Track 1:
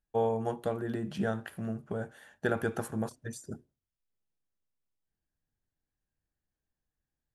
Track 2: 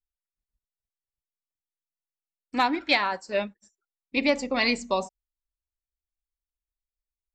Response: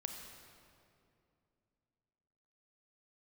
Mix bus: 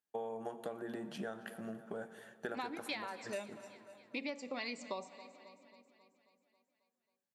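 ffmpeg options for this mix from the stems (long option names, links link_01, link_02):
-filter_complex "[0:a]highpass=frequency=270:poles=1,volume=-5dB,asplit=3[link_01][link_02][link_03];[link_02]volume=-8dB[link_04];[link_03]volume=-19dB[link_05];[1:a]volume=-8.5dB,asplit=3[link_06][link_07][link_08];[link_07]volume=-12.5dB[link_09];[link_08]volume=-22.5dB[link_10];[2:a]atrim=start_sample=2205[link_11];[link_04][link_09]amix=inputs=2:normalize=0[link_12];[link_12][link_11]afir=irnorm=-1:irlink=0[link_13];[link_05][link_10]amix=inputs=2:normalize=0,aecho=0:1:270|540|810|1080|1350|1620|1890|2160|2430:1|0.59|0.348|0.205|0.121|0.0715|0.0422|0.0249|0.0147[link_14];[link_01][link_06][link_13][link_14]amix=inputs=4:normalize=0,highpass=170,acompressor=threshold=-38dB:ratio=6"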